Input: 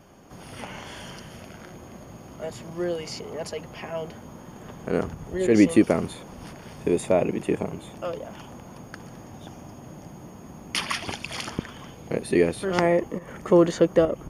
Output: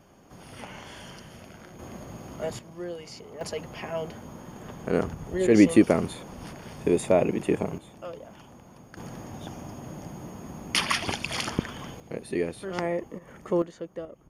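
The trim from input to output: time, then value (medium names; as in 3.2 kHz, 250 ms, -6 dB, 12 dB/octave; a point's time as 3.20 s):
-4 dB
from 1.79 s +2 dB
from 2.59 s -8 dB
from 3.41 s 0 dB
from 7.78 s -7.5 dB
from 8.97 s +2.5 dB
from 12.00 s -8 dB
from 13.62 s -18 dB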